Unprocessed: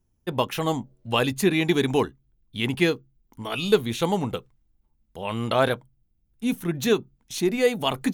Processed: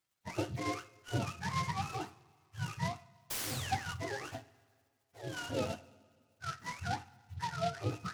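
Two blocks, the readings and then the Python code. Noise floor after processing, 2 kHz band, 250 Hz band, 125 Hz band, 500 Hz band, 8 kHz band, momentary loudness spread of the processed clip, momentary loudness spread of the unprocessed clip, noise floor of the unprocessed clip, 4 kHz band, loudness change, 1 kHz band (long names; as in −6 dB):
−78 dBFS, −12.0 dB, −18.0 dB, −9.0 dB, −18.5 dB, −8.0 dB, 10 LU, 10 LU, −69 dBFS, −14.5 dB, −14.0 dB, −8.5 dB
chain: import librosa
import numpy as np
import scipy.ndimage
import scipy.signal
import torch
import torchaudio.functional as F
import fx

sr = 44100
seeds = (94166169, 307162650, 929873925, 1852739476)

y = fx.octave_mirror(x, sr, pivot_hz=580.0)
y = fx.high_shelf(y, sr, hz=3800.0, db=-11.0)
y = fx.rider(y, sr, range_db=4, speed_s=2.0)
y = fx.spec_paint(y, sr, seeds[0], shape='fall', start_s=3.3, length_s=0.65, low_hz=1100.0, high_hz=10000.0, level_db=-38.0)
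y = scipy.signal.lfilter([1.0, -0.8], [1.0], y)
y = fx.rev_double_slope(y, sr, seeds[1], early_s=0.3, late_s=1.9, knee_db=-18, drr_db=8.5)
y = fx.noise_mod_delay(y, sr, seeds[2], noise_hz=3300.0, depth_ms=0.047)
y = F.gain(torch.from_numpy(y), 1.0).numpy()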